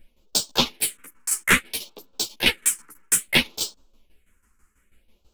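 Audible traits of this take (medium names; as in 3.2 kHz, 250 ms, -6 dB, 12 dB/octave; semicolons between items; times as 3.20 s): phasing stages 4, 0.6 Hz, lowest notch 590–2000 Hz; tremolo saw down 6.1 Hz, depth 80%; a shimmering, thickened sound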